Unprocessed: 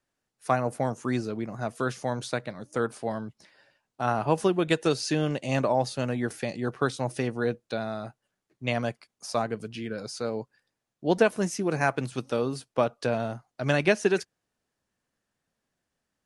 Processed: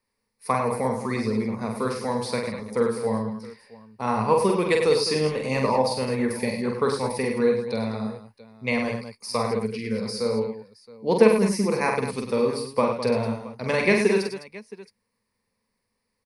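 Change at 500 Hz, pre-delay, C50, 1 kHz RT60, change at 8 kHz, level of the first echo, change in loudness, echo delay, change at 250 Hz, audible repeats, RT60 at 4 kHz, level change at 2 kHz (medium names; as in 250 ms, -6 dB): +5.0 dB, no reverb, no reverb, no reverb, +3.0 dB, -4.0 dB, +4.0 dB, 46 ms, +4.0 dB, 4, no reverb, +2.5 dB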